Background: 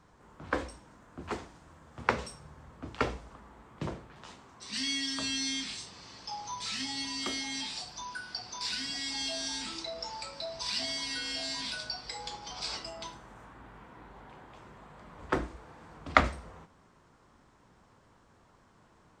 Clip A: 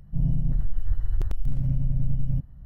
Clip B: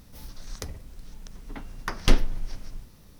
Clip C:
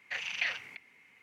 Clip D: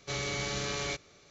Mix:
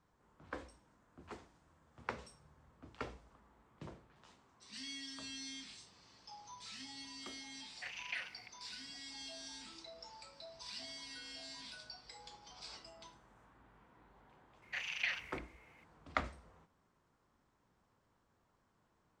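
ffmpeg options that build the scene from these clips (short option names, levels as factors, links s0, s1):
-filter_complex "[3:a]asplit=2[s0][s1];[0:a]volume=0.2[s2];[s1]equalizer=f=340:w=1.5:g=-12[s3];[s0]atrim=end=1.22,asetpts=PTS-STARTPTS,volume=0.316,afade=t=in:d=0.004:c=hsin,afade=t=out:st=1.216:d=0.004:c=hsin,adelay=7710[s4];[s3]atrim=end=1.22,asetpts=PTS-STARTPTS,volume=0.596,afade=t=in:d=0.004:c=hsin,afade=t=out:st=1.216:d=0.004:c=hsin,adelay=14620[s5];[s2][s4][s5]amix=inputs=3:normalize=0"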